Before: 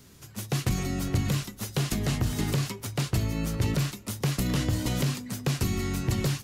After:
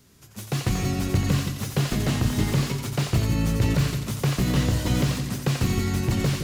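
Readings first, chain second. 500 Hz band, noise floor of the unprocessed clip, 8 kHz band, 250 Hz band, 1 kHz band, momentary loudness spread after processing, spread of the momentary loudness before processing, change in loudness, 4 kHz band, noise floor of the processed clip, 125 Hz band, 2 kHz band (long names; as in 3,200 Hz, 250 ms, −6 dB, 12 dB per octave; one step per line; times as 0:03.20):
+4.5 dB, −50 dBFS, +2.0 dB, +4.5 dB, +4.5 dB, 4 LU, 4 LU, +4.5 dB, +3.0 dB, −48 dBFS, +4.5 dB, +4.0 dB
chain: automatic gain control gain up to 7.5 dB
echo with a time of its own for lows and highs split 460 Hz, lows 162 ms, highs 88 ms, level −7 dB
slew-rate limiting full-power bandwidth 210 Hz
level −4 dB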